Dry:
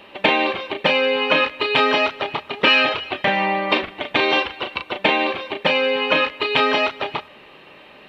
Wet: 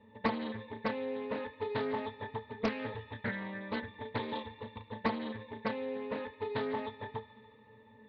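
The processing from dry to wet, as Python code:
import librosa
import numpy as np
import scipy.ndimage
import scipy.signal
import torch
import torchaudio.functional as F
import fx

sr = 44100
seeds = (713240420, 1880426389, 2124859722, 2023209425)

y = scipy.signal.sosfilt(scipy.signal.butter(2, 4200.0, 'lowpass', fs=sr, output='sos'), x)
y = fx.low_shelf(y, sr, hz=170.0, db=10.0)
y = fx.octave_resonator(y, sr, note='A', decay_s=0.16)
y = fx.echo_wet_highpass(y, sr, ms=72, feedback_pct=84, hz=1500.0, wet_db=-14.5)
y = fx.doppler_dist(y, sr, depth_ms=0.46)
y = F.gain(torch.from_numpy(y), -1.5).numpy()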